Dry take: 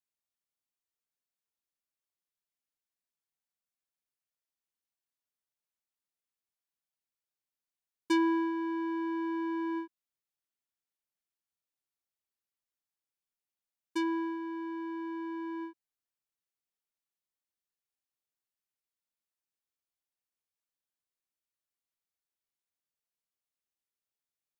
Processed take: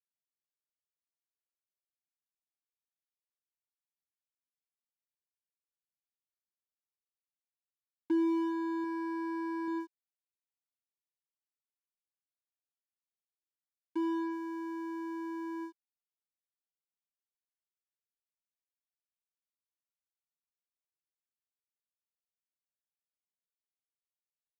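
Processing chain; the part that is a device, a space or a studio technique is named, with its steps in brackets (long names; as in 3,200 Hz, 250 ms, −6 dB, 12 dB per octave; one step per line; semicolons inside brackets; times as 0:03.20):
0:08.84–0:09.68: low-shelf EQ 250 Hz −5.5 dB
early transistor amplifier (dead-zone distortion −57 dBFS; slew-rate limiting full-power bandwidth 21 Hz)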